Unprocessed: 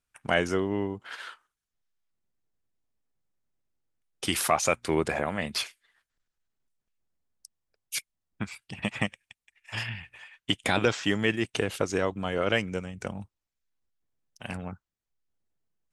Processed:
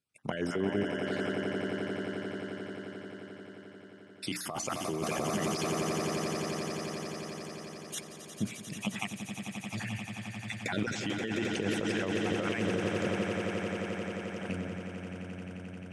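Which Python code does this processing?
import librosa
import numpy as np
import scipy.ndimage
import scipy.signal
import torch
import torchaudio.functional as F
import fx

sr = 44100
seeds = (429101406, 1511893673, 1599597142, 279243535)

y = fx.spec_dropout(x, sr, seeds[0], share_pct=35)
y = scipy.signal.sosfilt(scipy.signal.cheby1(2, 1.0, 150.0, 'highpass', fs=sr, output='sos'), y)
y = fx.high_shelf(y, sr, hz=3600.0, db=6.5)
y = fx.hum_notches(y, sr, base_hz=60, count=5)
y = fx.echo_swell(y, sr, ms=88, loudest=8, wet_db=-12)
y = fx.over_compress(y, sr, threshold_db=-29.0, ratio=-1.0)
y = scipy.signal.sosfilt(scipy.signal.butter(2, 8400.0, 'lowpass', fs=sr, output='sos'), y)
y = fx.low_shelf(y, sr, hz=470.0, db=9.0)
y = y * librosa.db_to_amplitude(-6.0)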